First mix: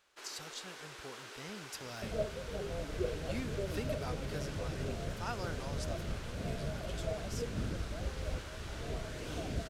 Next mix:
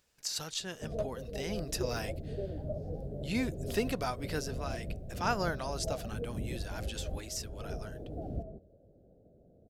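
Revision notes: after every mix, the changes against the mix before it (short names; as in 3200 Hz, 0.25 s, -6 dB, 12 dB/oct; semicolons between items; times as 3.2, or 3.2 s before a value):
speech +9.0 dB; first sound: muted; second sound: entry -1.20 s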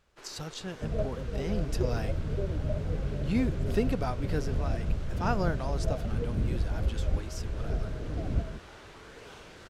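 first sound: unmuted; master: add tilt -2.5 dB/oct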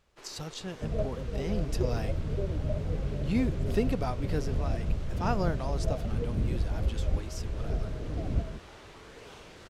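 master: add bell 1500 Hz -4 dB 0.31 oct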